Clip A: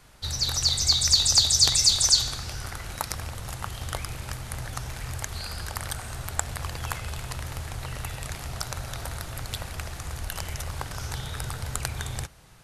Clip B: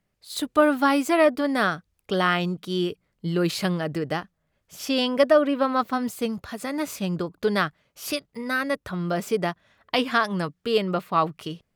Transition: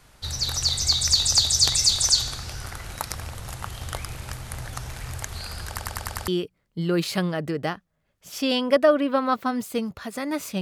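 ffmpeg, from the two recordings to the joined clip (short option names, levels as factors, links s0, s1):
-filter_complex "[0:a]apad=whole_dur=10.61,atrim=end=10.61,asplit=6[s0][s1][s2][s3][s4][s5];[s0]atrim=end=5.782[s6];[s1]atrim=start=5.678:end=5.782[s7];[s2]atrim=start=5.678:end=5.782[s8];[s3]atrim=start=5.678:end=5.782[s9];[s4]atrim=start=5.678:end=5.782[s10];[s5]atrim=start=5.678:end=5.782[s11];[1:a]atrim=start=2.748:end=7.08[s12];[s6][s7]acrossfade=d=0.004:c1=hsin:c2=hsin[s13];[s13][s8]acrossfade=d=0.004:c1=hsin:c2=hsin[s14];[s14][s9]acrossfade=d=0.004:c1=hsin:c2=hsin[s15];[s15][s10]acrossfade=d=0.004:c1=hsin:c2=hsin[s16];[s16][s11]acrossfade=d=0.004:c1=hsin:c2=hsin[s17];[s17][s12]acrossfade=d=0.004:c1=hsin:c2=hsin"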